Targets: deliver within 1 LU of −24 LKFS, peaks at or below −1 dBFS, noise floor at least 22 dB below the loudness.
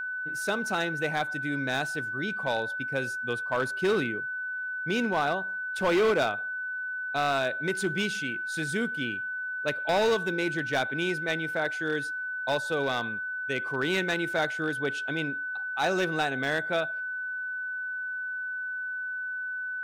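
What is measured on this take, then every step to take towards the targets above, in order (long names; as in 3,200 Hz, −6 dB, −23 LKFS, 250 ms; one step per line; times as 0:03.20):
share of clipped samples 1.1%; peaks flattened at −20.0 dBFS; interfering tone 1,500 Hz; level of the tone −31 dBFS; integrated loudness −29.0 LKFS; sample peak −20.0 dBFS; target loudness −24.0 LKFS
→ clipped peaks rebuilt −20 dBFS
notch filter 1,500 Hz, Q 30
level +5 dB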